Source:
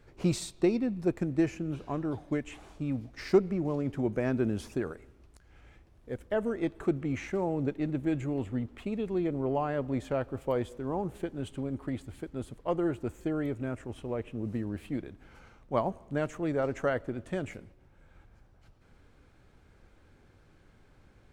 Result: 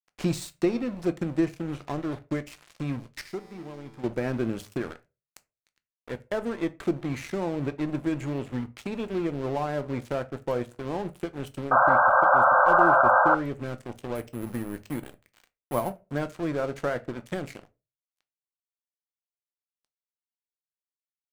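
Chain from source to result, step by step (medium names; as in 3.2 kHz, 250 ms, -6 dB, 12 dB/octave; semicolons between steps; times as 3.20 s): in parallel at +2.5 dB: compression 4:1, threshold -44 dBFS, peak gain reduction 22 dB; on the sum: crossover distortion -39.5 dBFS; 3.21–4.04 s: feedback comb 110 Hz, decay 2 s, mix 80%; 11.71–13.35 s: painted sound noise 510–1600 Hz -19 dBFS; 14.15–15.97 s: careless resampling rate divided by 4×, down none, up hold; on a send at -11 dB: reverberation RT60 0.25 s, pre-delay 3 ms; on the sum: tape noise reduction on one side only encoder only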